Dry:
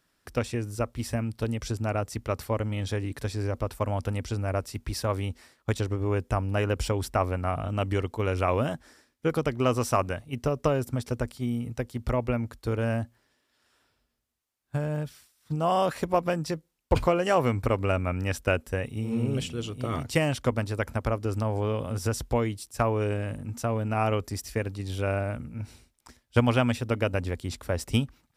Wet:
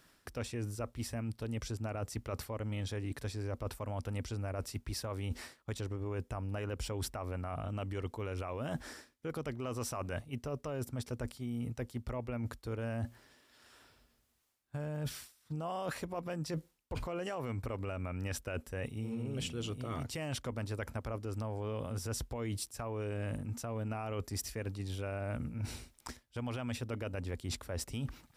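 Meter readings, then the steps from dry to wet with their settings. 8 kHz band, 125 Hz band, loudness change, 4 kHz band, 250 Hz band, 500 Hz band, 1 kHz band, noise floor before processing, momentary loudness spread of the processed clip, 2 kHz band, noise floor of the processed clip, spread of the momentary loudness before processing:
−4.5 dB, −9.5 dB, −11.0 dB, −7.5 dB, −10.5 dB, −12.5 dB, −14.0 dB, −73 dBFS, 3 LU, −11.5 dB, −72 dBFS, 7 LU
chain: brickwall limiter −22 dBFS, peak gain reduction 11.5 dB
reversed playback
downward compressor 16 to 1, threshold −42 dBFS, peak gain reduction 17 dB
reversed playback
level +7 dB

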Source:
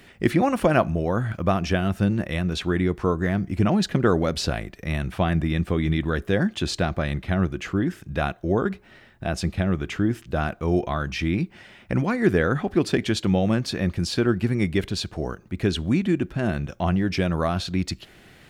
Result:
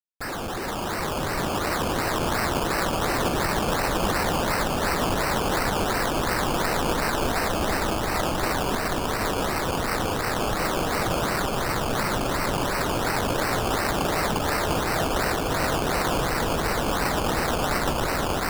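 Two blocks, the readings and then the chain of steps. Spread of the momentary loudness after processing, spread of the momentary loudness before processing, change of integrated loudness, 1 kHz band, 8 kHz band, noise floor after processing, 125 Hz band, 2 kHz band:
2 LU, 7 LU, −0.5 dB, +6.5 dB, +9.0 dB, −28 dBFS, −6.0 dB, +4.0 dB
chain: frequency axis turned over on the octave scale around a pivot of 1,800 Hz
bass and treble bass −14 dB, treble −4 dB
comparator with hysteresis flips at −39.5 dBFS
on a send: echo that builds up and dies away 117 ms, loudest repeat 8, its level −5.5 dB
on the sum: sample-and-hold swept by an LFO 18×, swing 60% 2.8 Hz
level +3 dB

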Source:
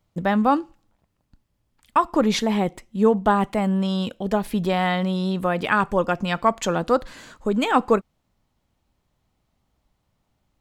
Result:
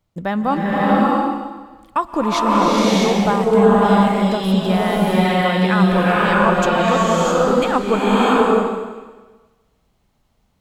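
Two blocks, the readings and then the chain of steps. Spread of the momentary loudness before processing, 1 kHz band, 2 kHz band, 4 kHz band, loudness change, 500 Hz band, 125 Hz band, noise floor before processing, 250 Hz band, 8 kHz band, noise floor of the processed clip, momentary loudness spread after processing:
5 LU, +6.5 dB, +7.0 dB, +7.0 dB, +6.0 dB, +7.0 dB, +7.5 dB, −73 dBFS, +7.0 dB, +7.0 dB, −64 dBFS, 9 LU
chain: slow-attack reverb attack 640 ms, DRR −7 dB
level −1 dB

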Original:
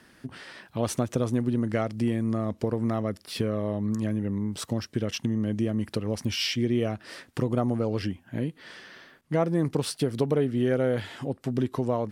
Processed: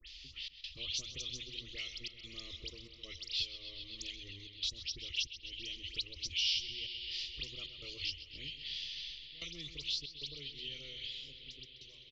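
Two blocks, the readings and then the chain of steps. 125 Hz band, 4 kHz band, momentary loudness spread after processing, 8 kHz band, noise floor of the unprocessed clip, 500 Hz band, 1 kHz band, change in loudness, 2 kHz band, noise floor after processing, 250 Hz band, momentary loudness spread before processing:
−27.0 dB, +2.0 dB, 10 LU, −7.5 dB, −58 dBFS, −30.5 dB, below −30 dB, −11.5 dB, −6.5 dB, −56 dBFS, −32.5 dB, 9 LU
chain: fade-out on the ending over 3.12 s
inverse Chebyshev band-stop filter 100–1,700 Hz, stop band 40 dB
parametric band 740 Hz −8.5 dB 1.8 octaves
mains-hum notches 60/120/180/240 Hz
automatic gain control gain up to 9.5 dB
all-pass dispersion highs, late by 82 ms, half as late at 2,500 Hz
gate pattern "xxx.xxxxxxxxx.x" 94 BPM −24 dB
high-frequency loss of the air 290 metres
bucket-brigade delay 130 ms, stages 4,096, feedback 74%, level −13.5 dB
downsampling to 16,000 Hz
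multiband upward and downward compressor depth 70%
level +7.5 dB

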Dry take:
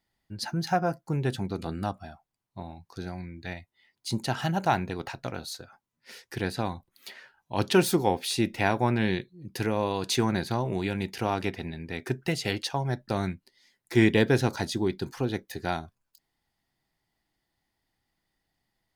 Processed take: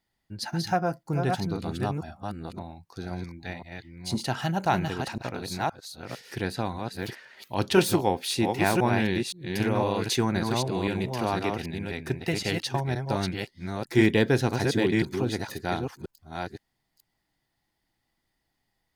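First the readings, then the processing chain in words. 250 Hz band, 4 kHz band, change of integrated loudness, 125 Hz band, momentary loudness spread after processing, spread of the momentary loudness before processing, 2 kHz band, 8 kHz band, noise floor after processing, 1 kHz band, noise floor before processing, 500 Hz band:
+1.5 dB, +1.5 dB, +1.0 dB, +1.5 dB, 15 LU, 18 LU, +1.5 dB, +1.5 dB, −79 dBFS, +1.5 dB, −82 dBFS, +1.5 dB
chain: delay that plays each chunk backwards 518 ms, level −4 dB

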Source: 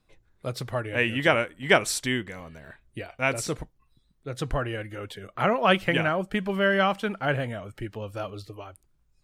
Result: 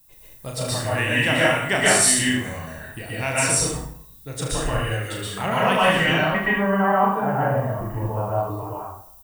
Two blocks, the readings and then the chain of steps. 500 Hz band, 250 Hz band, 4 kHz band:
+3.5 dB, +5.0 dB, +6.5 dB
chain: low-pass filter sweep 9,100 Hz → 970 Hz, 0:05.82–0:06.63
comb filter 1.1 ms, depth 36%
in parallel at +1 dB: downward compressor, threshold −32 dBFS, peak gain reduction 17 dB
on the sum: background noise violet −58 dBFS
high-shelf EQ 7,100 Hz +8.5 dB
on a send: ambience of single reflections 36 ms −4.5 dB, 75 ms −8 dB
on the sum: dense smooth reverb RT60 0.63 s, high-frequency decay 0.75×, pre-delay 110 ms, DRR −5.5 dB
level −6.5 dB

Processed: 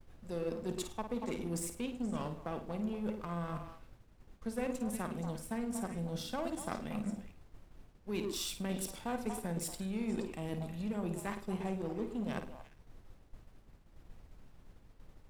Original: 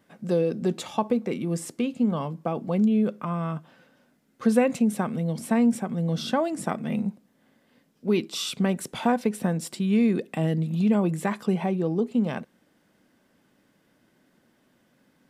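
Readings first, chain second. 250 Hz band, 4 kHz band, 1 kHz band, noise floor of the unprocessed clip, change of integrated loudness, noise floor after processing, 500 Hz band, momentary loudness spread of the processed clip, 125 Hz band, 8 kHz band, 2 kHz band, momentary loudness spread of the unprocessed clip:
−14.0 dB, −9.5 dB, −11.5 dB, −66 dBFS, −13.0 dB, −61 dBFS, −12.5 dB, 5 LU, −13.0 dB, −5.0 dB, −11.0 dB, 8 LU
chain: on a send: echo through a band-pass that steps 118 ms, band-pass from 320 Hz, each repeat 1.4 octaves, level −4 dB
on the sum: power curve on the samples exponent 1.4
high-shelf EQ 5,500 Hz +10.5 dB
reversed playback
downward compressor 6 to 1, threshold −36 dBFS, peak gain reduction 19.5 dB
reversed playback
flutter between parallel walls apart 9 metres, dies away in 0.34 s
background noise brown −53 dBFS
downward expander −49 dBFS
level +1 dB

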